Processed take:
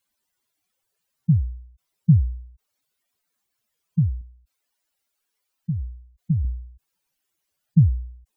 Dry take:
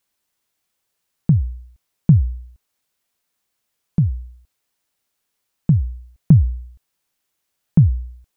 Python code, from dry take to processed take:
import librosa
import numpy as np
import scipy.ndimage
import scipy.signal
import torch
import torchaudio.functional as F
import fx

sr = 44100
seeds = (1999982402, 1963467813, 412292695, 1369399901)

y = fx.spec_expand(x, sr, power=2.6)
y = fx.peak_eq(y, sr, hz=130.0, db=-9.0, octaves=1.9, at=(4.21, 6.45))
y = y * 10.0 ** (-2.5 / 20.0)